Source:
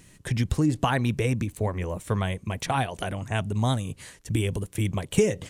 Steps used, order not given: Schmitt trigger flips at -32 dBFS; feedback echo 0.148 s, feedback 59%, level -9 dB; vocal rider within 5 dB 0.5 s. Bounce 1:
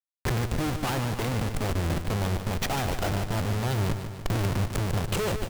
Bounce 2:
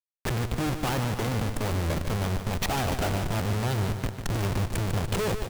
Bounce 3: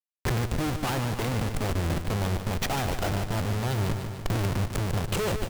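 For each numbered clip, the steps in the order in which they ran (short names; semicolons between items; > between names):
Schmitt trigger > vocal rider > feedback echo; vocal rider > Schmitt trigger > feedback echo; Schmitt trigger > feedback echo > vocal rider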